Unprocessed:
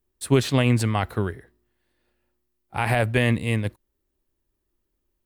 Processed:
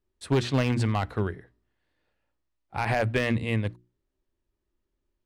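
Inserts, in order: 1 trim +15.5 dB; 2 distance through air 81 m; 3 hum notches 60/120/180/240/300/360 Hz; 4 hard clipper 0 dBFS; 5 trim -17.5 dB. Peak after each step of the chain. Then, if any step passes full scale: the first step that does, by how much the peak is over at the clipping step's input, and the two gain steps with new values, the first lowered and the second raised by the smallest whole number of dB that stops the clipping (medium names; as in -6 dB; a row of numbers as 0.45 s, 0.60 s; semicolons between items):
+8.5 dBFS, +8.0 dBFS, +8.5 dBFS, 0.0 dBFS, -17.5 dBFS; step 1, 8.5 dB; step 1 +6.5 dB, step 5 -8.5 dB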